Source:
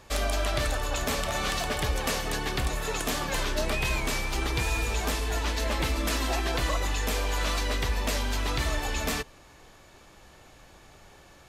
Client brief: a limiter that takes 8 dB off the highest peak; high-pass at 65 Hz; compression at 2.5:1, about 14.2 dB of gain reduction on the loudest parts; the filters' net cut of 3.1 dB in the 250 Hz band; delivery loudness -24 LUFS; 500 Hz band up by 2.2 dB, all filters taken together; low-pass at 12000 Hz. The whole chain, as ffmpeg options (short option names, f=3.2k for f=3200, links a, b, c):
-af "highpass=65,lowpass=12k,equalizer=f=250:t=o:g=-5.5,equalizer=f=500:t=o:g=4,acompressor=threshold=-47dB:ratio=2.5,volume=21dB,alimiter=limit=-14dB:level=0:latency=1"